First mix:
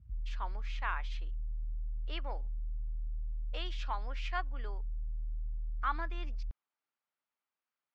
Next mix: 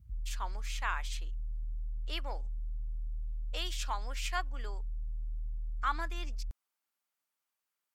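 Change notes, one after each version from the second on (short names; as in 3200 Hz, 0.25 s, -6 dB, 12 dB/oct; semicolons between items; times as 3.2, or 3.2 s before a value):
master: remove air absorption 250 m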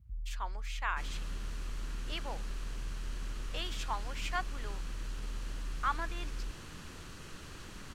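second sound: unmuted; master: add tone controls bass -2 dB, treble -6 dB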